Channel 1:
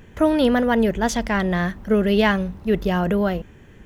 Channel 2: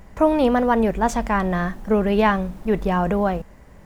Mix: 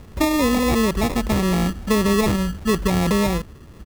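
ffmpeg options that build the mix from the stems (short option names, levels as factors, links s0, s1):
-filter_complex "[0:a]acompressor=threshold=0.112:ratio=6,volume=1.33[s0];[1:a]adelay=0.8,volume=0.316[s1];[s0][s1]amix=inputs=2:normalize=0,acrusher=samples=29:mix=1:aa=0.000001,equalizer=f=63:w=3.4:g=9"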